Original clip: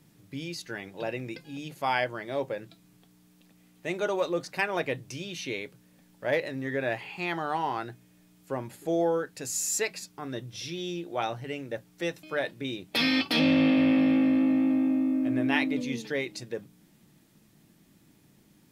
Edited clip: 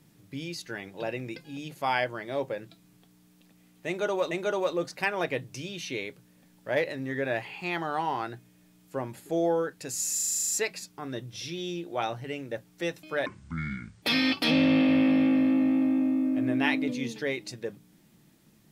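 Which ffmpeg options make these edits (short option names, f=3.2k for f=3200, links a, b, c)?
-filter_complex "[0:a]asplit=13[a][b][c][d][e][f][g][h][i][j][k][l][m];[a]atrim=end=4.312[n];[b]atrim=start=3.868:end=9.742[o];[c]atrim=start=9.698:end=9.742[p];[d]atrim=start=9.698:end=9.742[q];[e]atrim=start=9.698:end=9.742[r];[f]atrim=start=9.698:end=9.742[s];[g]atrim=start=9.698:end=9.742[t];[h]atrim=start=9.698:end=9.742[u];[i]atrim=start=9.698:end=9.742[v];[j]atrim=start=9.698:end=9.742[w];[k]atrim=start=9.698:end=12.464[x];[l]atrim=start=12.46:end=12.91,asetpts=PTS-STARTPTS,asetrate=26019,aresample=44100[y];[m]atrim=start=12.906[z];[n][o]acrossfade=d=0.004:c1=hsin:c2=hsin[aa];[aa][p]acrossfade=d=0.004:c1=hsin:c2=hsin[ab];[ab][q]acrossfade=d=0.004:c1=hsin:c2=hsin[ac];[ac][r]acrossfade=d=0.004:c1=hsin:c2=hsin[ad];[ad][s]acrossfade=d=0.004:c1=hsin:c2=hsin[ae];[ae][t]acrossfade=d=0.004:c1=hsin:c2=hsin[af];[af][u]acrossfade=d=0.004:c1=hsin:c2=hsin[ag];[ag][v]acrossfade=d=0.004:c1=hsin:c2=hsin[ah];[ah][w]acrossfade=d=0.004:c1=hsin:c2=hsin[ai];[ai][x]acrossfade=d=0.004:c1=hsin:c2=hsin[aj];[aj][y]acrossfade=d=0.004:c1=hsin:c2=hsin[ak];[ak][z]acrossfade=d=0.004:c1=hsin:c2=hsin"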